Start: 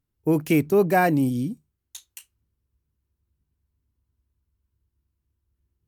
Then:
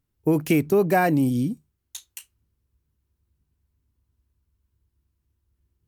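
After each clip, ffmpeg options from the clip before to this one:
-af "acompressor=threshold=-20dB:ratio=2.5,volume=3dB"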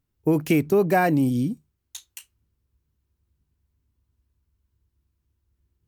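-af "equalizer=f=11k:t=o:w=0.79:g=-3"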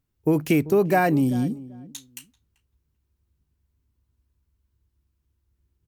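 -filter_complex "[0:a]asplit=2[a][b];[b]adelay=388,lowpass=f=1.2k:p=1,volume=-18dB,asplit=2[c][d];[d]adelay=388,lowpass=f=1.2k:p=1,volume=0.18[e];[a][c][e]amix=inputs=3:normalize=0"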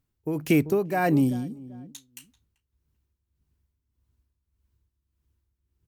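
-af "tremolo=f=1.7:d=0.65"

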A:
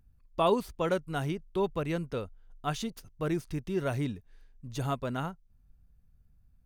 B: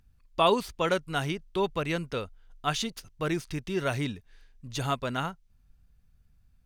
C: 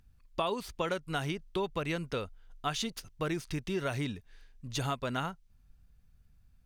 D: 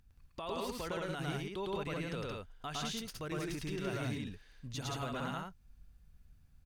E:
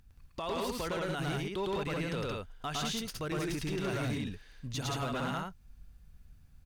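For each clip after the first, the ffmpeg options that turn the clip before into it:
-af "equalizer=f=3.5k:w=0.33:g=9"
-af "acompressor=threshold=-29dB:ratio=6"
-af "alimiter=level_in=5dB:limit=-24dB:level=0:latency=1:release=77,volume=-5dB,aecho=1:1:107.9|174.9:1|0.794,volume=-3dB"
-af "asoftclip=type=hard:threshold=-34dB,volume=5dB"

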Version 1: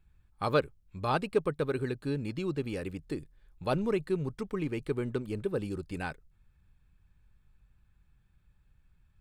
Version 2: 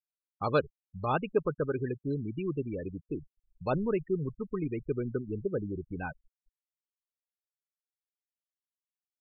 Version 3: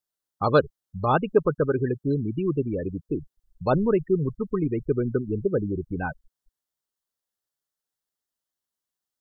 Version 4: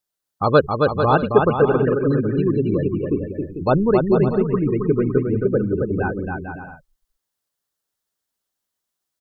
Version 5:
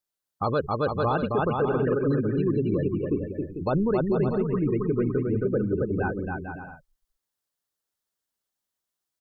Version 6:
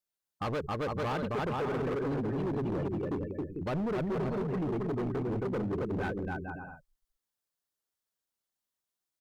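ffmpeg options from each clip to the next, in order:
-af "afftfilt=real='re*gte(hypot(re,im),0.0282)':imag='im*gte(hypot(re,im),0.0282)':win_size=1024:overlap=0.75"
-af "equalizer=f=2.4k:w=3.9:g=-12,volume=8dB"
-af "aecho=1:1:270|445.5|559.6|633.7|681.9:0.631|0.398|0.251|0.158|0.1,volume=4.5dB"
-af "alimiter=limit=-11.5dB:level=0:latency=1:release=21,volume=-4.5dB"
-af "asoftclip=type=hard:threshold=-25.5dB,volume=-4dB"

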